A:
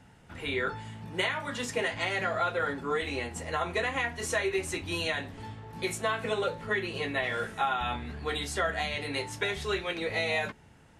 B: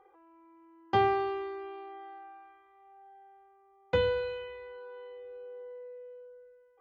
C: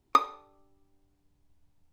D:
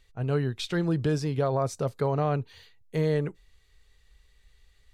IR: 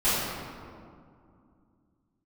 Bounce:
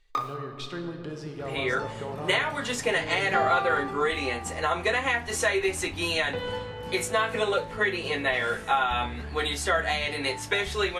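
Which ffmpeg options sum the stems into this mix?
-filter_complex "[0:a]dynaudnorm=f=370:g=3:m=1.78,asubboost=boost=3:cutoff=61,adelay=1100,volume=1[s0];[1:a]adelay=2400,volume=0.501,asplit=2[s1][s2];[s2]volume=0.224[s3];[2:a]aeval=exprs='val(0)*gte(abs(val(0)),0.00891)':c=same,flanger=delay=20:depth=5:speed=2.3,volume=0.631,asplit=2[s4][s5];[s5]volume=0.1[s6];[3:a]highshelf=f=8000:g=-11,acompressor=threshold=0.0447:ratio=6,equalizer=f=130:t=o:w=1.8:g=-7,volume=0.631,asplit=2[s7][s8];[s8]volume=0.133[s9];[4:a]atrim=start_sample=2205[s10];[s3][s6][s9]amix=inputs=3:normalize=0[s11];[s11][s10]afir=irnorm=-1:irlink=0[s12];[s0][s1][s4][s7][s12]amix=inputs=5:normalize=0,lowshelf=f=220:g=-4"

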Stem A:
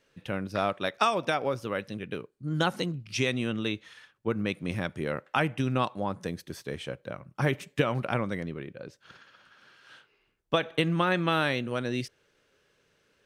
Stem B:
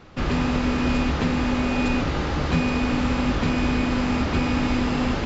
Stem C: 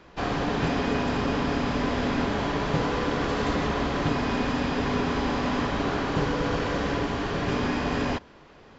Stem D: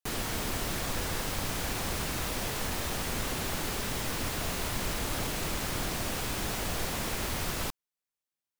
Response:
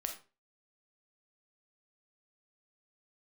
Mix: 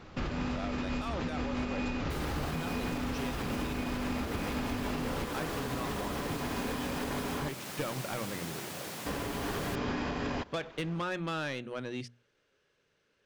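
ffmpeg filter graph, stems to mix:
-filter_complex "[0:a]lowpass=7500,bandreject=f=60:t=h:w=6,bandreject=f=120:t=h:w=6,bandreject=f=180:t=h:w=6,bandreject=f=240:t=h:w=6,asoftclip=type=tanh:threshold=0.0708,volume=0.531,asplit=2[s0][s1];[1:a]volume=0.708[s2];[2:a]alimiter=limit=0.0794:level=0:latency=1:release=172,adelay=2250,volume=0.794,asplit=3[s3][s4][s5];[s3]atrim=end=7.49,asetpts=PTS-STARTPTS,afade=t=out:st=7.486:d=0.004:c=hsin[s6];[s4]atrim=start=7.49:end=9.06,asetpts=PTS-STARTPTS,volume=0[s7];[s5]atrim=start=9.06,asetpts=PTS-STARTPTS,afade=t=in:d=0.004:c=hsin[s8];[s6][s7][s8]concat=n=3:v=0:a=1[s9];[3:a]highpass=f=120:w=0.5412,highpass=f=120:w=1.3066,adelay=2050,volume=0.447[s10];[s1]apad=whole_len=231860[s11];[s2][s11]sidechaincompress=threshold=0.0112:ratio=4:attack=5.1:release=137[s12];[s0][s12][s9][s10]amix=inputs=4:normalize=0,alimiter=level_in=1.12:limit=0.0631:level=0:latency=1:release=217,volume=0.891"

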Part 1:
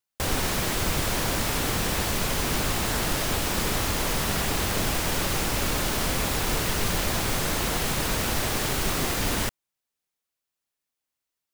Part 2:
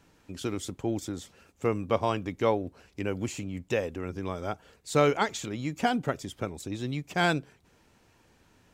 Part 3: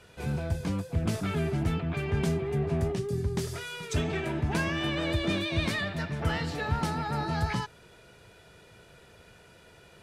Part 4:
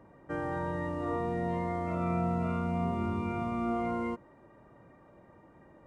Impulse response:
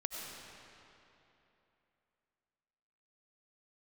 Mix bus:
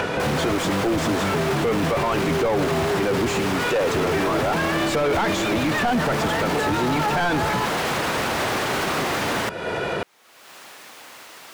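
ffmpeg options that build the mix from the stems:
-filter_complex "[0:a]alimiter=limit=0.0708:level=0:latency=1,highpass=78,acrossover=split=170[s0][s1];[s1]acompressor=threshold=0.02:ratio=6[s2];[s0][s2]amix=inputs=2:normalize=0,volume=0.944[s3];[1:a]volume=1.41[s4];[2:a]tiltshelf=f=970:g=3,acompressor=threshold=0.0178:ratio=2,volume=1.19[s5];[s3][s4][s5]amix=inputs=3:normalize=0,acompressor=mode=upward:threshold=0.0251:ratio=2.5,asplit=2[s6][s7];[s7]highpass=f=720:p=1,volume=39.8,asoftclip=type=tanh:threshold=0.531[s8];[s6][s8]amix=inputs=2:normalize=0,lowpass=f=1200:p=1,volume=0.501,alimiter=limit=0.168:level=0:latency=1"

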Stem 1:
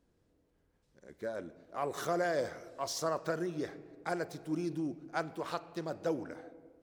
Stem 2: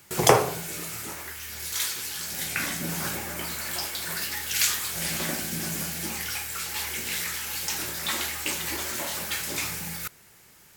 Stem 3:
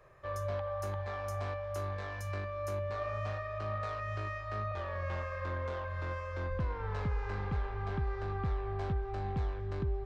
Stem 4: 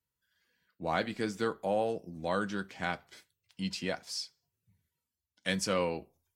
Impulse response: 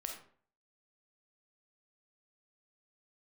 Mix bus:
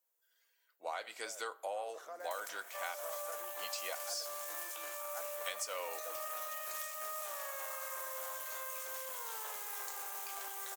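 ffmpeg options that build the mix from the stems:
-filter_complex "[0:a]aemphasis=mode=reproduction:type=50fm,volume=0.237[s0];[1:a]acompressor=threshold=0.0224:ratio=5,aeval=exprs='val(0)*sin(2*PI*1100*n/s)':c=same,aeval=exprs='0.133*(cos(1*acos(clip(val(0)/0.133,-1,1)))-cos(1*PI/2))+0.0168*(cos(6*acos(clip(val(0)/0.133,-1,1)))-cos(6*PI/2))':c=same,adelay=2200,volume=0.237[s1];[2:a]adelay=2500,volume=0.631[s2];[3:a]bandreject=f=1700:w=12,volume=0.794,asplit=2[s3][s4];[s4]volume=0.141[s5];[4:a]atrim=start_sample=2205[s6];[s5][s6]afir=irnorm=-1:irlink=0[s7];[s0][s1][s2][s3][s7]amix=inputs=5:normalize=0,highpass=f=570:w=0.5412,highpass=f=570:w=1.3066,aexciter=amount=1.9:drive=7.4:freq=6300,acompressor=threshold=0.0158:ratio=10"

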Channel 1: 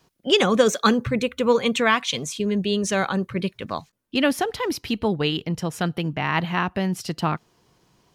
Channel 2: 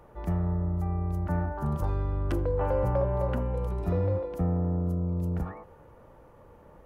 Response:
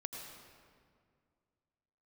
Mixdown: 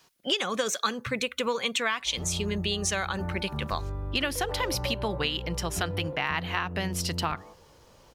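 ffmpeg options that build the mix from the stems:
-filter_complex "[0:a]tiltshelf=f=640:g=-7,volume=0.794[s0];[1:a]adelay=1900,volume=0.596[s1];[s0][s1]amix=inputs=2:normalize=0,acompressor=threshold=0.0562:ratio=5"

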